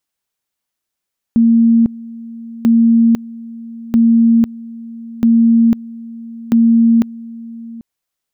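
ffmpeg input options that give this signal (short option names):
-f lavfi -i "aevalsrc='pow(10,(-6.5-20.5*gte(mod(t,1.29),0.5))/20)*sin(2*PI*230*t)':d=6.45:s=44100"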